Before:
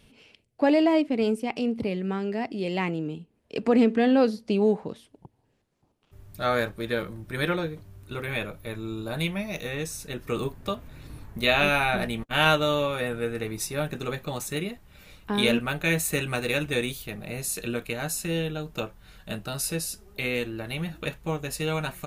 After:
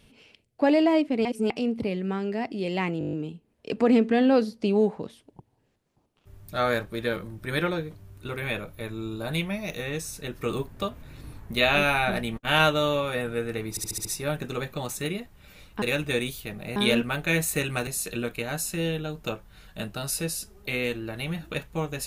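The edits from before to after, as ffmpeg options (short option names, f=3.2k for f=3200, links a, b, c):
-filter_complex "[0:a]asplit=18[a][b][c][d][e][f][g][h][i][j][k][l][m][n][o][p][q][r];[a]atrim=end=1.252[s];[b]atrim=start=1.248:end=1.502,asetpts=PTS-STARTPTS,areverse[t];[c]atrim=start=1.498:end=3.012[u];[d]atrim=start=2.988:end=3.012[v];[e]atrim=start=2.988:end=3.012[w];[f]atrim=start=2.988:end=3.012[x];[g]atrim=start=2.988:end=3.012[y];[h]atrim=start=2.988:end=3.012[z];[i]atrim=start=2.988:end=3.012[aa];[j]atrim=start=2.988:end=13.632[ab];[k]atrim=start=13.558:end=13.632[ac];[l]atrim=start=13.558:end=13.632[ad];[m]atrim=start=13.558:end=13.632[ae];[n]atrim=start=13.558:end=13.632[af];[o]atrim=start=13.558:end=15.332[ag];[p]atrim=start=16.438:end=17.382[ah];[q]atrim=start=15.328:end=16.442[ai];[r]atrim=start=17.378[aj];[s][t]acrossfade=d=0.004:c1=hsin:c2=hsin[ak];[ak][u]acrossfade=d=0.004:c1=hsin:c2=hsin[al];[al][v]acrossfade=d=0.004:c1=hsin:c2=hsin[am];[am][w]acrossfade=d=0.004:c1=hsin:c2=hsin[an];[an][x]acrossfade=d=0.004:c1=hsin:c2=hsin[ao];[ao][y]acrossfade=d=0.004:c1=hsin:c2=hsin[ap];[ap][z]acrossfade=d=0.004:c1=hsin:c2=hsin[aq];[aq][aa]acrossfade=d=0.004:c1=hsin:c2=hsin[ar];[ar][ab]acrossfade=d=0.004:c1=hsin:c2=hsin[as];[as][ac]acrossfade=d=0.004:c1=hsin:c2=hsin[at];[at][ad]acrossfade=d=0.004:c1=hsin:c2=hsin[au];[au][ae]acrossfade=d=0.004:c1=hsin:c2=hsin[av];[av][af]acrossfade=d=0.004:c1=hsin:c2=hsin[aw];[aw][ag]acrossfade=d=0.004:c1=hsin:c2=hsin[ax];[ax][ah]acrossfade=d=0.004:c1=hsin:c2=hsin[ay];[ay][ai]acrossfade=d=0.004:c1=hsin:c2=hsin[az];[az][aj]acrossfade=d=0.004:c1=hsin:c2=hsin"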